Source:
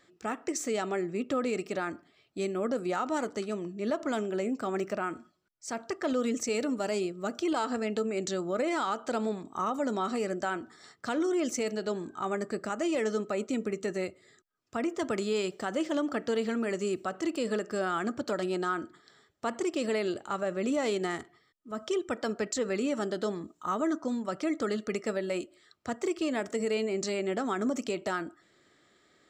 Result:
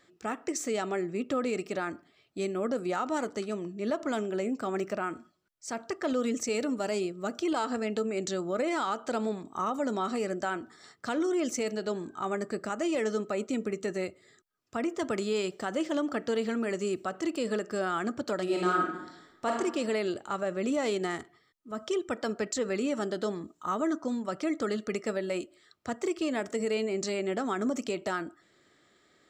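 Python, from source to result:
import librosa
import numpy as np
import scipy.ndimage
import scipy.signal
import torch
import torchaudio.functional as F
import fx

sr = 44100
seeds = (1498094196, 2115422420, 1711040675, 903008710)

y = fx.reverb_throw(x, sr, start_s=18.43, length_s=1.06, rt60_s=0.9, drr_db=-2.0)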